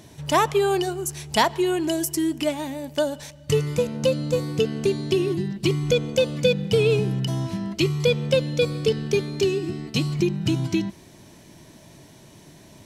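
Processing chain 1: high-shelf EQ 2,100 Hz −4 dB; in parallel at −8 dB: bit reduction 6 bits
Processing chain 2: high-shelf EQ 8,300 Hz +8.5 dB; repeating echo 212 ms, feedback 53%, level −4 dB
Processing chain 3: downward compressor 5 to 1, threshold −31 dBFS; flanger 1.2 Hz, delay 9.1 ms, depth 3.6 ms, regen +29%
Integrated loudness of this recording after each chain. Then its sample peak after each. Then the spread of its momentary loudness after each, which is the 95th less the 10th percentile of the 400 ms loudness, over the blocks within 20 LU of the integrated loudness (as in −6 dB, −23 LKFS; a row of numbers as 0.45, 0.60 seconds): −21.0, −21.0, −38.0 LKFS; −3.0, −3.0, −21.0 dBFS; 6, 6, 15 LU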